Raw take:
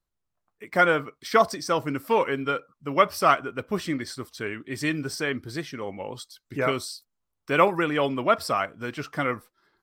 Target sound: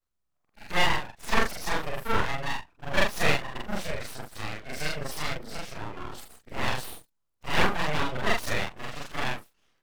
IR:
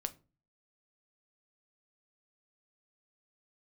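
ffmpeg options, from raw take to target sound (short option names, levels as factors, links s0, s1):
-af "afftfilt=real='re':imag='-im':win_size=4096:overlap=0.75,aeval=exprs='abs(val(0))':c=same,volume=1.58"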